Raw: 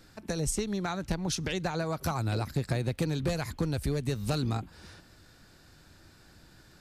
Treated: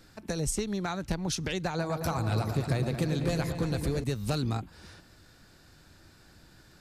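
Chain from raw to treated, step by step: 1.67–4.04 repeats that get brighter 0.113 s, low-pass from 750 Hz, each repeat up 2 oct, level -6 dB

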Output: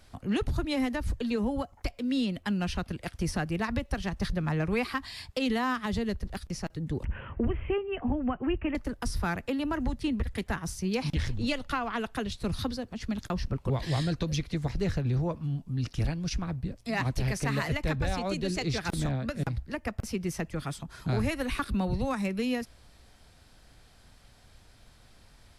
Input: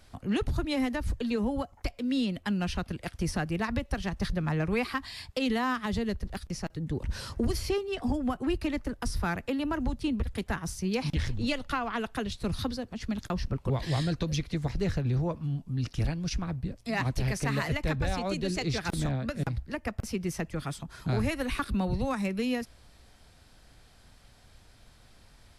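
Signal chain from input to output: 7.05–8.75 steep low-pass 3000 Hz 96 dB/oct; 9.75–10.48 bell 1900 Hz +7 dB 0.34 oct

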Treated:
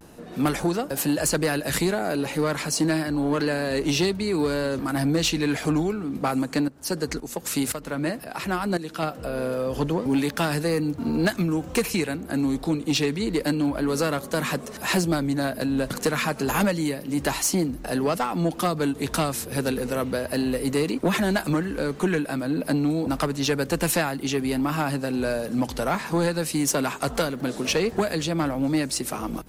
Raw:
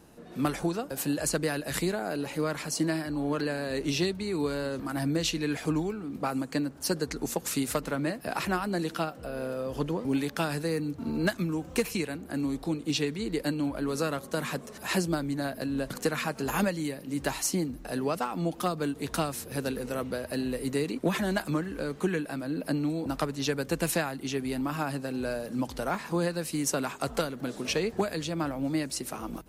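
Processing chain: 6.67–9.03 tremolo saw up 1.9 Hz, depth 80%; vibrato 0.3 Hz 26 cents; soft clip -22.5 dBFS, distortion -17 dB; gain +7.5 dB

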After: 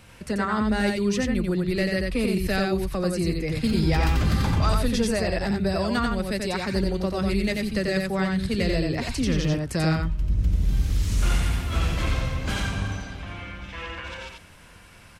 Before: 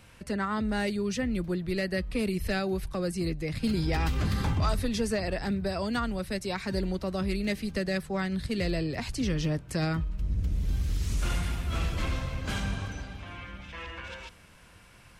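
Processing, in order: echo 89 ms -3.5 dB; gain +4 dB

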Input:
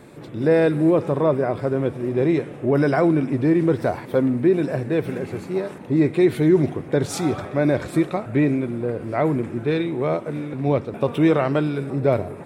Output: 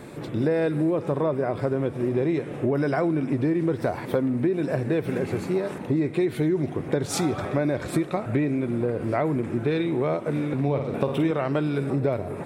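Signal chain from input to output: 10.63–11.31 flutter echo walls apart 8.6 m, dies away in 0.47 s; compressor, threshold -25 dBFS, peak gain reduction 13 dB; gain +4 dB

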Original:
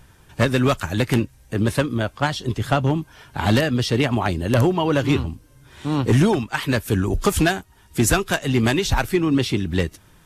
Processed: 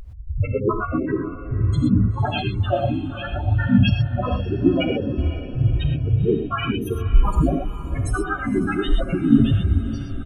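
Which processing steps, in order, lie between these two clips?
recorder AGC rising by 46 dB/s; reverb removal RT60 0.55 s; bell 2700 Hz +5.5 dB 1.1 oct; compressor 6:1, threshold -20 dBFS, peak gain reduction 8 dB; phaser 0.53 Hz, delay 3.1 ms, feedback 62%; loudest bins only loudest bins 1; harmoniser -12 st -9 dB, -4 st -1 dB, -3 st -5 dB; diffused feedback echo 0.503 s, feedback 55%, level -13 dB; reverb, pre-delay 3 ms, DRR 4 dB; gain +6 dB

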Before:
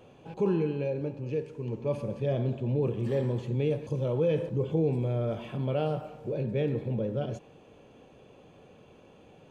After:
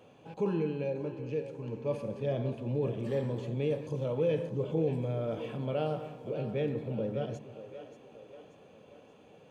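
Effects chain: HPF 140 Hz 6 dB/oct; notch 370 Hz, Q 12; on a send: split-band echo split 300 Hz, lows 0.177 s, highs 0.582 s, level -12 dB; on the sum: gain -2 dB

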